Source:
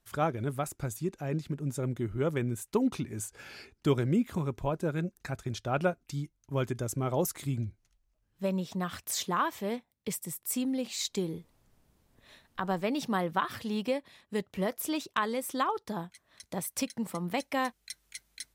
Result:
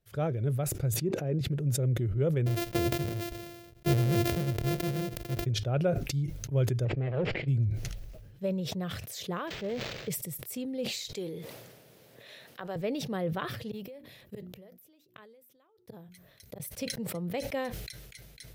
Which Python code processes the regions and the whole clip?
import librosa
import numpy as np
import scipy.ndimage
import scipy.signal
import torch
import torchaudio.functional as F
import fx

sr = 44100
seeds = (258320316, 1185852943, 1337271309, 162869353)

y = fx.chain(x, sr, fx.highpass(hz=230.0, slope=12),
    fx.tilt_eq(slope=-2.5), at=(0.94, 1.41))
y = fx.chain(y, sr, fx.sample_sort(block=128),
    fx.high_shelf(hz=6100.0, db=7.0), at=(2.46, 5.46))
y = fx.chain(y, sr, fx.lower_of_two(delay_ms=0.41),
    fx.lowpass(hz=3100.0, slope=24),
    fx.low_shelf(hz=75.0, db=-12.0), at=(6.85, 7.48))
y = fx.chain(y, sr, fx.crossing_spikes(level_db=-38.0),
    fx.high_shelf(hz=4900.0, db=7.0),
    fx.resample_linear(factor=4), at=(9.47, 10.09))
y = fx.chain(y, sr, fx.highpass(hz=190.0, slope=12),
    fx.low_shelf(hz=410.0, db=-11.0),
    fx.env_flatten(amount_pct=50), at=(11.15, 12.76))
y = fx.chain(y, sr, fx.peak_eq(hz=14000.0, db=14.0, octaves=0.47),
    fx.hum_notches(base_hz=60, count=6),
    fx.gate_flip(shuts_db=-27.0, range_db=-33), at=(13.71, 16.6))
y = fx.graphic_eq(y, sr, hz=(125, 250, 500, 1000, 8000), db=(12, -5, 9, -10, -7))
y = fx.sustainer(y, sr, db_per_s=39.0)
y = y * 10.0 ** (-4.5 / 20.0)